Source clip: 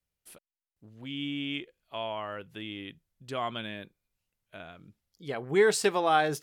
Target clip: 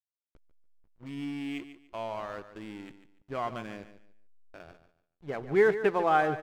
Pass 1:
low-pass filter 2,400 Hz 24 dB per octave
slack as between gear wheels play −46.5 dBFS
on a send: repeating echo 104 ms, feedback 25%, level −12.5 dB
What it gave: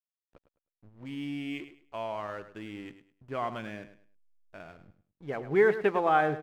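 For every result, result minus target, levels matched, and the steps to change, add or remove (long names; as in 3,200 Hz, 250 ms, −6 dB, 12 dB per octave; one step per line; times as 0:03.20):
echo 41 ms early; slack as between gear wheels: distortion −7 dB
change: repeating echo 145 ms, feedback 25%, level −12.5 dB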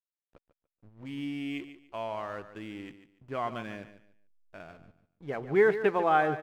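slack as between gear wheels: distortion −7 dB
change: slack as between gear wheels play −39 dBFS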